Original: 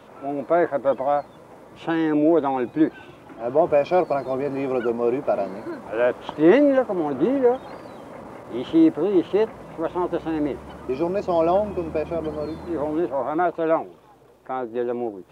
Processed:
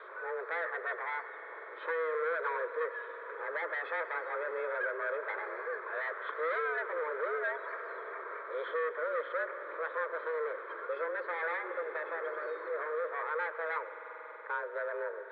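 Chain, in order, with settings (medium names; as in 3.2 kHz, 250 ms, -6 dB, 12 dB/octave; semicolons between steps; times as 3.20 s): hard clipper -20.5 dBFS, distortion -7 dB; waveshaping leveller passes 1; distance through air 380 m; mistuned SSB +160 Hz 280–3500 Hz; dynamic bell 1.6 kHz, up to +6 dB, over -46 dBFS, Q 1.6; static phaser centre 2.8 kHz, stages 6; reverberation RT60 4.0 s, pre-delay 90 ms, DRR 10.5 dB; three bands compressed up and down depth 40%; trim -3.5 dB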